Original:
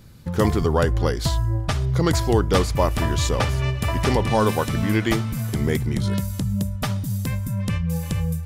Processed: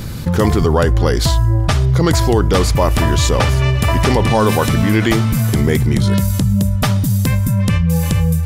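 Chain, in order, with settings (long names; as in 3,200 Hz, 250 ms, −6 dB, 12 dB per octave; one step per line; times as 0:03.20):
in parallel at +2 dB: brickwall limiter −15.5 dBFS, peak gain reduction 9.5 dB
on the sum: envelope flattener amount 50%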